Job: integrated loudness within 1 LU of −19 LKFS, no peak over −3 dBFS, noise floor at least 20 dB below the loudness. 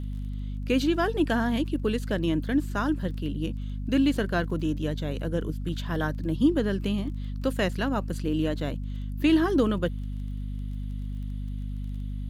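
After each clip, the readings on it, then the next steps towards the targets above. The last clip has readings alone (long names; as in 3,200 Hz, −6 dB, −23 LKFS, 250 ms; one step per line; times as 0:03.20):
crackle rate 21 per second; mains hum 50 Hz; hum harmonics up to 250 Hz; level of the hum −30 dBFS; integrated loudness −28.0 LKFS; sample peak −11.0 dBFS; target loudness −19.0 LKFS
→ click removal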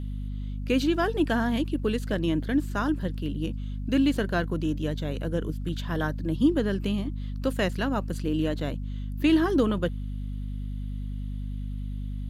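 crackle rate 0 per second; mains hum 50 Hz; hum harmonics up to 250 Hz; level of the hum −30 dBFS
→ mains-hum notches 50/100/150/200/250 Hz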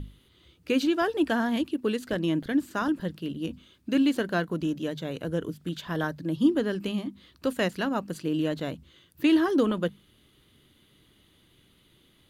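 mains hum none found; integrated loudness −28.0 LKFS; sample peak −11.0 dBFS; target loudness −19.0 LKFS
→ level +9 dB
brickwall limiter −3 dBFS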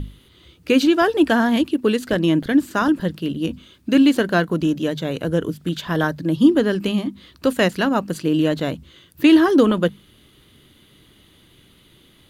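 integrated loudness −19.0 LKFS; sample peak −3.0 dBFS; background noise floor −54 dBFS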